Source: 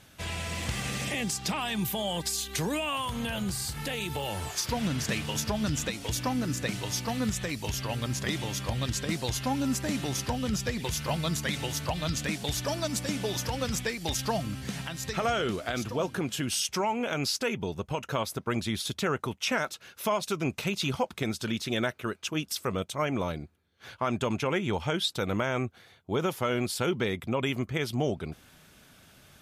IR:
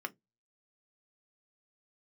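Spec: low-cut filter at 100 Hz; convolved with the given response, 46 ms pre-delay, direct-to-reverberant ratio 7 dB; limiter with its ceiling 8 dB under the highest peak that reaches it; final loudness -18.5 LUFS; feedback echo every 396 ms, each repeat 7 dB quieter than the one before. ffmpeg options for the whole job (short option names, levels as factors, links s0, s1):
-filter_complex "[0:a]highpass=100,alimiter=limit=0.0794:level=0:latency=1,aecho=1:1:396|792|1188|1584|1980:0.447|0.201|0.0905|0.0407|0.0183,asplit=2[s0][s1];[1:a]atrim=start_sample=2205,adelay=46[s2];[s1][s2]afir=irnorm=-1:irlink=0,volume=0.376[s3];[s0][s3]amix=inputs=2:normalize=0,volume=4.47"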